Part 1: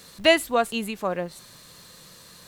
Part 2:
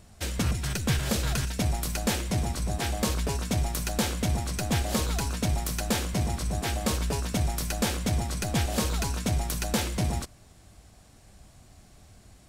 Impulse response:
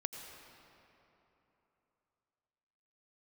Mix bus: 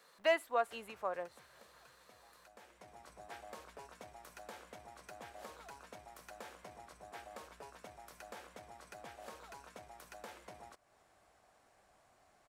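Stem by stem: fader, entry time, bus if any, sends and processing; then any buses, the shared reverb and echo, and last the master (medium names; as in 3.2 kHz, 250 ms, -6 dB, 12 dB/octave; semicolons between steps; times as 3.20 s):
-8.5 dB, 0.00 s, no send, none
-4.0 dB, 0.50 s, no send, compression 2.5:1, threshold -41 dBFS, peak gain reduction 13 dB; auto duck -11 dB, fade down 1.50 s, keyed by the first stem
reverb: none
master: bass shelf 120 Hz -8.5 dB; hard clipper -20.5 dBFS, distortion -18 dB; three-band isolator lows -18 dB, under 460 Hz, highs -13 dB, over 2 kHz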